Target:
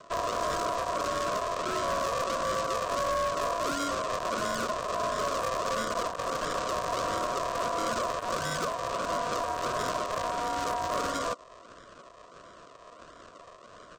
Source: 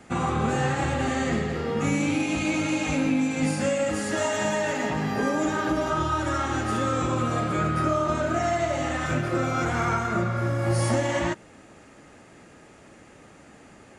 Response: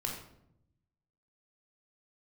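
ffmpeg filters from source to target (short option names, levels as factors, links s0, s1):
-filter_complex "[0:a]aresample=16000,acrusher=samples=17:mix=1:aa=0.000001:lfo=1:lforange=17:lforate=1.5,aresample=44100,equalizer=f=1300:t=o:w=0.31:g=-12,acrossover=split=420|3800[s0][s1][s2];[s1]alimiter=level_in=1.41:limit=0.0631:level=0:latency=1:release=252,volume=0.708[s3];[s0][s3][s2]amix=inputs=3:normalize=0,asoftclip=type=hard:threshold=0.0447,highpass=f=120:w=0.5412,highpass=f=120:w=1.3066,aeval=exprs='val(0)*sin(2*PI*840*n/s)':c=same,volume=1.5"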